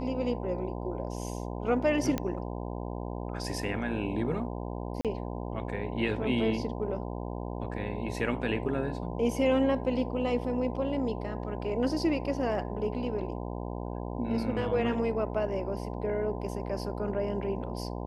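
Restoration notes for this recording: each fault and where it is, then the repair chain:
mains buzz 60 Hz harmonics 17 −36 dBFS
0:02.18: click −16 dBFS
0:05.01–0:05.05: drop-out 37 ms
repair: click removal
hum removal 60 Hz, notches 17
repair the gap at 0:05.01, 37 ms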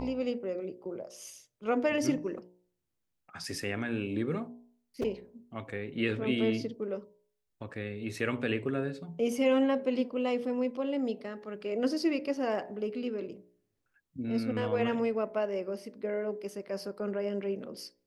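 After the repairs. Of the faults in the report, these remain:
none of them is left

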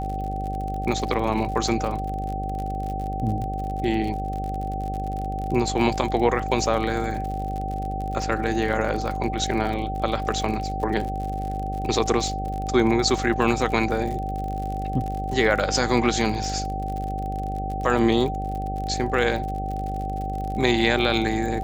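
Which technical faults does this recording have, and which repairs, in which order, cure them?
mains buzz 50 Hz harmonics 16 −30 dBFS
surface crackle 52 per second −30 dBFS
whistle 770 Hz −29 dBFS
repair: click removal
hum removal 50 Hz, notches 16
notch filter 770 Hz, Q 30

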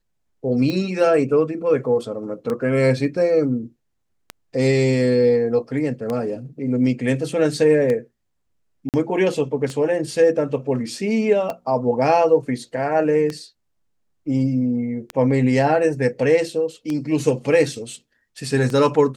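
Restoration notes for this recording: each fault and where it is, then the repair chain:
scratch tick 33 1/3 rpm −13 dBFS
0:08.89–0:08.94: drop-out 48 ms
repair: click removal
repair the gap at 0:08.89, 48 ms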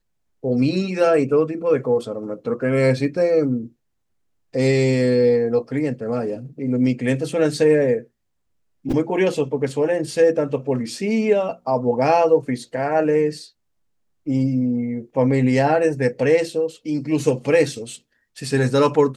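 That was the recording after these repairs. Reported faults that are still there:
none of them is left

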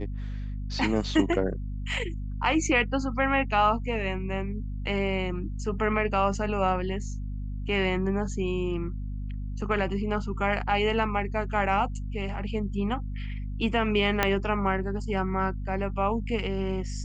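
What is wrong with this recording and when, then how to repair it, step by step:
mains hum 50 Hz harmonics 5 −33 dBFS
0:14.23: click −7 dBFS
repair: click removal
hum removal 50 Hz, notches 5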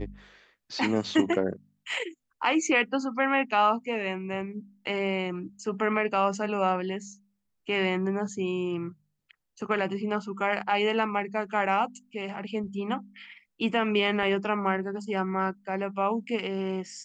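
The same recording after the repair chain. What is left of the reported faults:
0:14.23: click

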